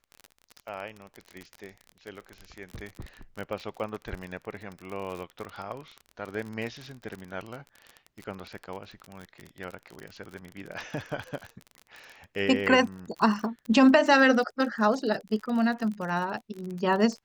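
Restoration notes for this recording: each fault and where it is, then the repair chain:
crackle 34/s -33 dBFS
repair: de-click

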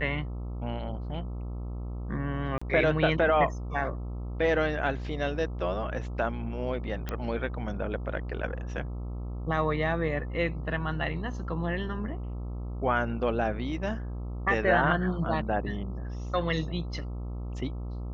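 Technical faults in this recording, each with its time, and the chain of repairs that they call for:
buzz 60 Hz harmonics 22 -35 dBFS
2.58–2.62 gap 35 ms
7.09 pop -18 dBFS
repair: de-click; de-hum 60 Hz, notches 22; interpolate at 2.58, 35 ms

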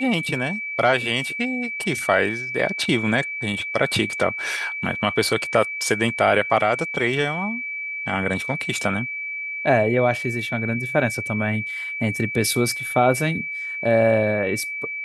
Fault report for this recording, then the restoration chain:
tone 2300 Hz -27 dBFS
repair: notch 2300 Hz, Q 30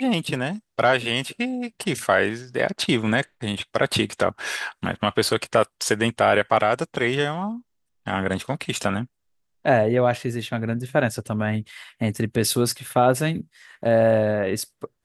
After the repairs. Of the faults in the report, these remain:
none

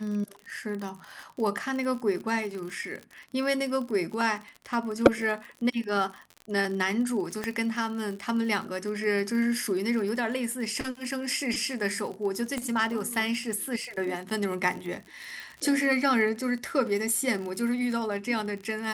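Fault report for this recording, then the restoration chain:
crackle 47/s -34 dBFS
7.44 pop -15 dBFS
12.58 pop -17 dBFS
15.4 pop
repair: de-click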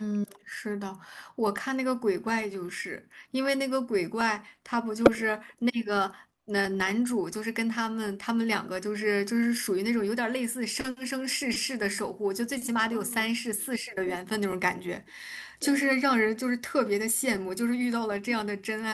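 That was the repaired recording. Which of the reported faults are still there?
none

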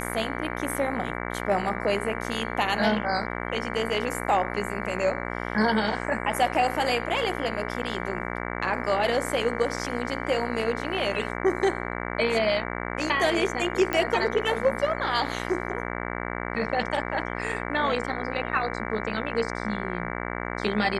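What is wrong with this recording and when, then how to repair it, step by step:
buzz 60 Hz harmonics 38 -32 dBFS
13.93 pop -11 dBFS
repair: de-click; de-hum 60 Hz, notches 38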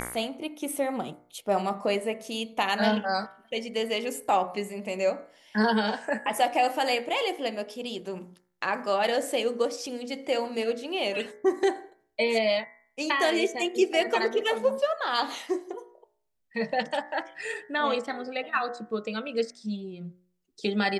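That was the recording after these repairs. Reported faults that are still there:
none

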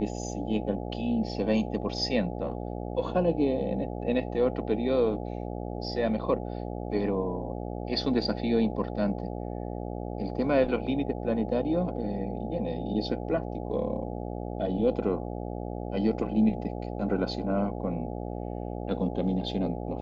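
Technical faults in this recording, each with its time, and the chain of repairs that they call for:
buzz 60 Hz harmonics 14 -35 dBFS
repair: de-hum 60 Hz, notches 14

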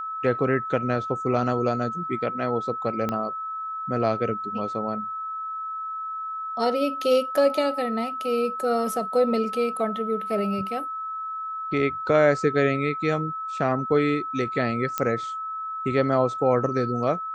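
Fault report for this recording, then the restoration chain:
tone 1300 Hz -29 dBFS
3.09 pop -14 dBFS
14.98 pop -10 dBFS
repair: de-click; notch 1300 Hz, Q 30

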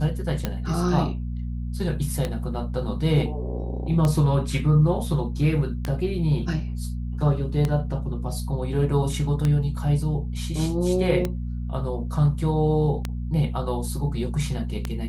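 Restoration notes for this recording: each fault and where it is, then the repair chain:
hum 60 Hz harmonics 4 -29 dBFS
tick 33 1/3 rpm -11 dBFS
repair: de-click; de-hum 60 Hz, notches 4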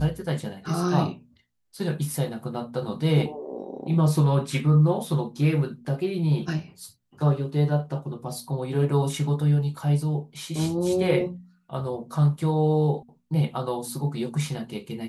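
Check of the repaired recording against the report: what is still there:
none

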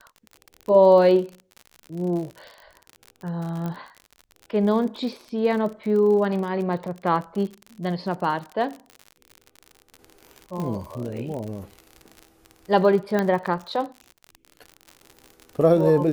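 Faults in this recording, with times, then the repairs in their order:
crackle 54/s -31 dBFS
3.66 pop -19 dBFS
10.6 pop -19 dBFS
13.19 pop -11 dBFS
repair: de-click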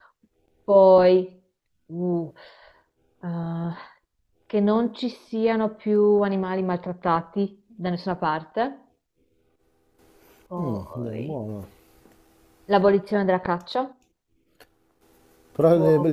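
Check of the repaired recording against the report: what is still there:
none

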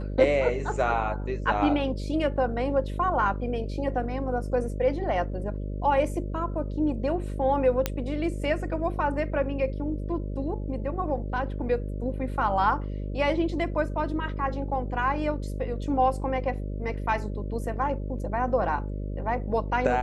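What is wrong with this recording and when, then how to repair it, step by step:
buzz 50 Hz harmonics 12 -32 dBFS
7.86 pop -9 dBFS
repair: de-click; de-hum 50 Hz, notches 12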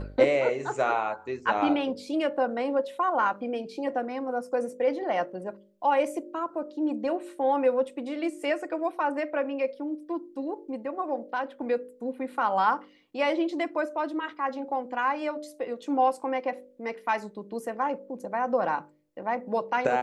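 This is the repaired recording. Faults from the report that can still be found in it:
7.86 pop

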